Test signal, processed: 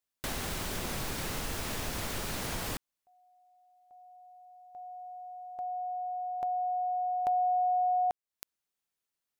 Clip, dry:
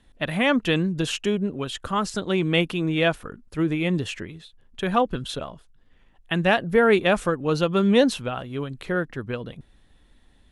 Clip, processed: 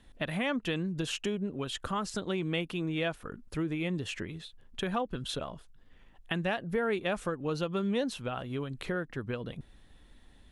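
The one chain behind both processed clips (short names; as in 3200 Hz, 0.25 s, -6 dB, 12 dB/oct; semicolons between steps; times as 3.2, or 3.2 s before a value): compressor 2.5:1, threshold -34 dBFS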